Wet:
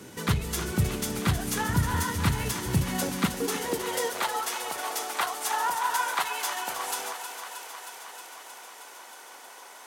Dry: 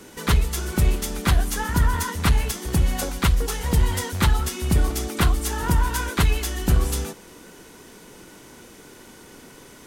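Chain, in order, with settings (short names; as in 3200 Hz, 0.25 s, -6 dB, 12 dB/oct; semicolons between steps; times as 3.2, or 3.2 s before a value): limiter -15 dBFS, peak gain reduction 6.5 dB; high-pass sweep 110 Hz -> 780 Hz, 2.74–4.38; thinning echo 0.314 s, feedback 78%, high-pass 380 Hz, level -9 dB; gain -2 dB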